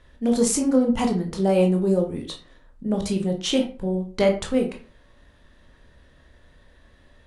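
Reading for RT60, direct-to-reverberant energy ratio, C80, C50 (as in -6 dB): 0.40 s, 2.0 dB, 15.0 dB, 9.5 dB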